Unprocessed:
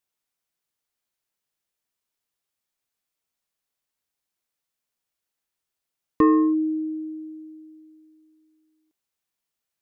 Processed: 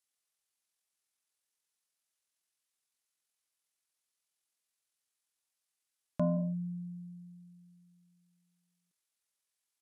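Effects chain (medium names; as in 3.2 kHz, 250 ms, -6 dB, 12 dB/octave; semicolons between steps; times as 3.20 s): pitch shift -10 st; tilt EQ +2.5 dB/octave; trim -7.5 dB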